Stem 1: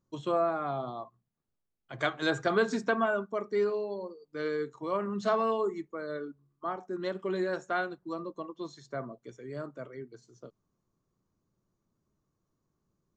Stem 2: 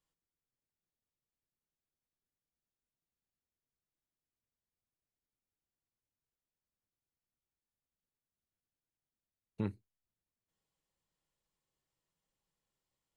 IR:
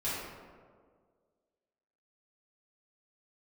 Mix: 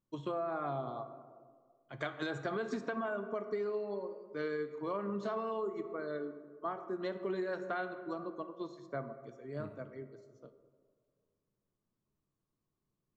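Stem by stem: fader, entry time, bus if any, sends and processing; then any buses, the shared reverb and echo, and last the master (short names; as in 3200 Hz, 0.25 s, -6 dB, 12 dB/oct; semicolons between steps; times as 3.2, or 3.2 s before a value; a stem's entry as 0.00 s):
+1.0 dB, 0.00 s, send -15.5 dB, high shelf 6300 Hz -11 dB; limiter -24 dBFS, peak gain reduction 8.5 dB; upward expander 1.5:1, over -48 dBFS
-15.0 dB, 0.00 s, send -9.5 dB, dry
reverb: on, RT60 1.8 s, pre-delay 3 ms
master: compressor, threshold -33 dBFS, peak gain reduction 7.5 dB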